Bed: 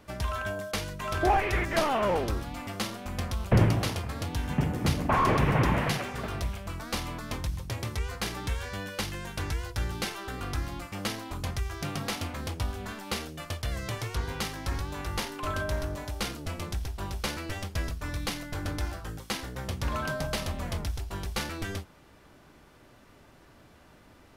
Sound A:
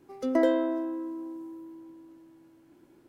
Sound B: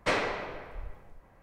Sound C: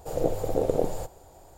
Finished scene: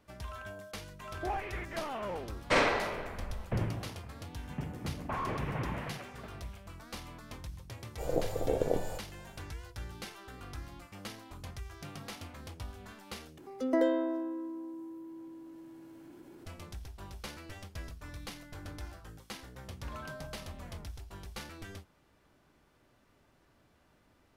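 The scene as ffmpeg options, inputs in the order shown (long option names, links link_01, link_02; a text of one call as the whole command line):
ffmpeg -i bed.wav -i cue0.wav -i cue1.wav -i cue2.wav -filter_complex "[0:a]volume=-11.5dB[link_01];[2:a]asplit=2[link_02][link_03];[link_03]adelay=49,volume=-3dB[link_04];[link_02][link_04]amix=inputs=2:normalize=0[link_05];[1:a]acompressor=mode=upward:threshold=-37dB:ratio=2.5:attack=3.2:release=140:knee=2.83:detection=peak[link_06];[link_01]asplit=2[link_07][link_08];[link_07]atrim=end=13.384[link_09];[link_06]atrim=end=3.08,asetpts=PTS-STARTPTS,volume=-4dB[link_10];[link_08]atrim=start=16.456[link_11];[link_05]atrim=end=1.42,asetpts=PTS-STARTPTS,afade=type=in:duration=0.004:curve=hsin,afade=type=out:start_time=1.416:duration=0.004:curve=hsin,adelay=2440[link_12];[3:a]atrim=end=1.57,asetpts=PTS-STARTPTS,volume=-5.5dB,afade=type=in:duration=0.1,afade=type=out:start_time=1.47:duration=0.1,adelay=7920[link_13];[link_09][link_10]acrossfade=duration=0.004:curve1=hsin:curve2=hsin[link_14];[link_14][link_11]acrossfade=duration=0.004:curve1=hsin:curve2=hsin[link_15];[link_15][link_12][link_13]amix=inputs=3:normalize=0" out.wav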